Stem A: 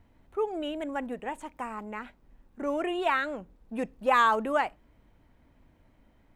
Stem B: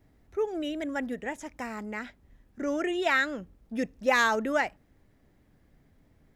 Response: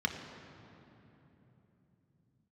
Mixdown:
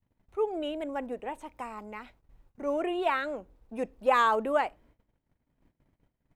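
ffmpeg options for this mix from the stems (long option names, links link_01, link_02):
-filter_complex "[0:a]adynamicequalizer=threshold=0.0126:dfrequency=500:dqfactor=1.1:tfrequency=500:tqfactor=1.1:attack=5:release=100:ratio=0.375:range=2.5:mode=boostabove:tftype=bell,volume=-2.5dB,asplit=2[link_01][link_02];[1:a]highpass=frequency=86:poles=1,equalizer=frequency=140:width=0.92:gain=11.5,volume=-1,volume=-9.5dB[link_03];[link_02]apad=whole_len=280276[link_04];[link_03][link_04]sidechaincompress=threshold=-33dB:ratio=8:attack=16:release=684[link_05];[link_01][link_05]amix=inputs=2:normalize=0,agate=range=-22dB:threshold=-59dB:ratio=16:detection=peak"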